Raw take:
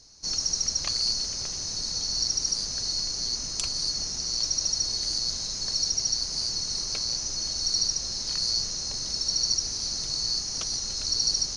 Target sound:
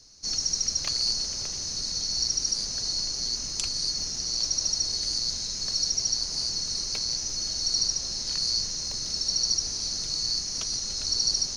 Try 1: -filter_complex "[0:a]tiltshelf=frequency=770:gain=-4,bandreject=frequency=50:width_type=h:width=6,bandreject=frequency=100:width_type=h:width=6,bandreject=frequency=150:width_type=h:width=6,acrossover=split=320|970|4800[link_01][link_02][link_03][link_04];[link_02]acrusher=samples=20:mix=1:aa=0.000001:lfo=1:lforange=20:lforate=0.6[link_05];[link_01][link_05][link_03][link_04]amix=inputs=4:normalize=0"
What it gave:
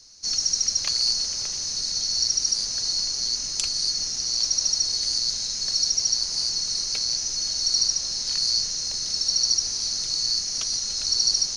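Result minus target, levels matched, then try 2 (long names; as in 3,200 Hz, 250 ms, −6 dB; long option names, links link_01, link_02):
1,000 Hz band −3.0 dB
-filter_complex "[0:a]bandreject=frequency=50:width_type=h:width=6,bandreject=frequency=100:width_type=h:width=6,bandreject=frequency=150:width_type=h:width=6,acrossover=split=320|970|4800[link_01][link_02][link_03][link_04];[link_02]acrusher=samples=20:mix=1:aa=0.000001:lfo=1:lforange=20:lforate=0.6[link_05];[link_01][link_05][link_03][link_04]amix=inputs=4:normalize=0"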